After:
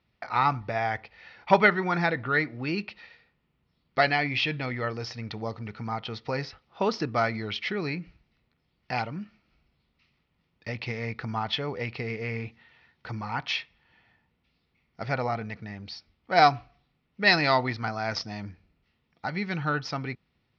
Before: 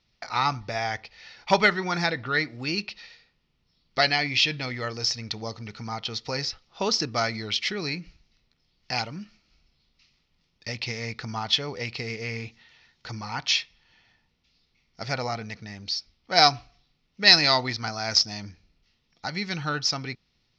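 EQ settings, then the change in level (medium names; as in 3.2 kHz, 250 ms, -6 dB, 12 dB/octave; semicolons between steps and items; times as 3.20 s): high-pass 55 Hz; low-pass 2.2 kHz 12 dB/octave; +1.5 dB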